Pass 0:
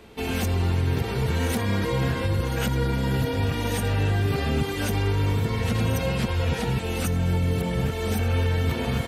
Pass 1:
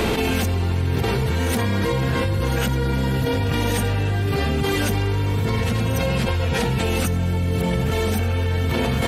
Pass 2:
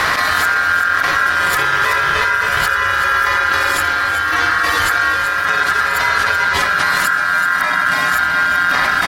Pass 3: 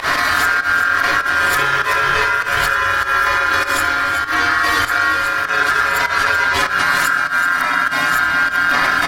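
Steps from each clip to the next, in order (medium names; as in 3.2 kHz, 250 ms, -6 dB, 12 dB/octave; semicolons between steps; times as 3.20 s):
level flattener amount 100%
ring modulator 1.5 kHz; delay 381 ms -9.5 dB; trim +8 dB
volume shaper 99 bpm, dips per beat 1, -24 dB, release 93 ms; reverberation RT60 0.30 s, pre-delay 3 ms, DRR 6 dB; trim -1 dB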